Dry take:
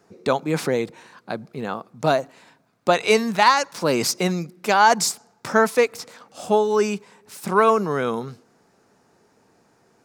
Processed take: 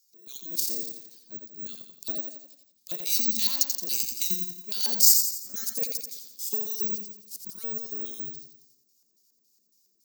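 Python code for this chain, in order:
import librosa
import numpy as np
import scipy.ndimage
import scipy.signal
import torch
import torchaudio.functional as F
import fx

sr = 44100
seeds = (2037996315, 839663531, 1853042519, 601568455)

p1 = fx.curve_eq(x, sr, hz=(240.0, 750.0, 1100.0, 1800.0, 4600.0), db=(0, -19, -17, -10, 9))
p2 = fx.level_steps(p1, sr, step_db=12)
p3 = fx.transient(p2, sr, attack_db=-11, sustain_db=3)
p4 = fx.filter_lfo_bandpass(p3, sr, shape='square', hz=3.6, low_hz=410.0, high_hz=6100.0, q=1.0)
p5 = (np.kron(p4[::2], np.eye(2)[0]) * 2)[:len(p4)]
p6 = fx.high_shelf(p5, sr, hz=3500.0, db=11.0)
p7 = p6 + fx.echo_feedback(p6, sr, ms=86, feedback_pct=48, wet_db=-5.5, dry=0)
y = F.gain(torch.from_numpy(p7), -5.0).numpy()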